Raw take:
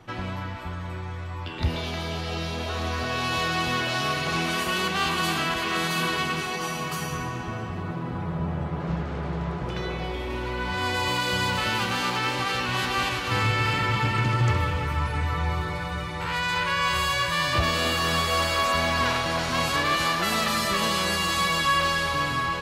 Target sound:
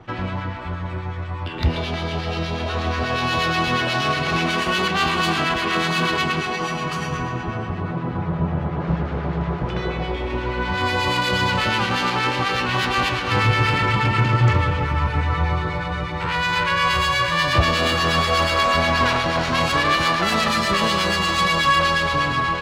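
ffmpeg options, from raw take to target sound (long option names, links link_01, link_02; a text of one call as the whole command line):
ffmpeg -i in.wav -filter_complex "[0:a]acrossover=split=1300[link_01][link_02];[link_01]aeval=exprs='val(0)*(1-0.5/2+0.5/2*cos(2*PI*8.3*n/s))':channel_layout=same[link_03];[link_02]aeval=exprs='val(0)*(1-0.5/2-0.5/2*cos(2*PI*8.3*n/s))':channel_layout=same[link_04];[link_03][link_04]amix=inputs=2:normalize=0,adynamicsmooth=sensitivity=2.5:basefreq=4400,volume=8dB" out.wav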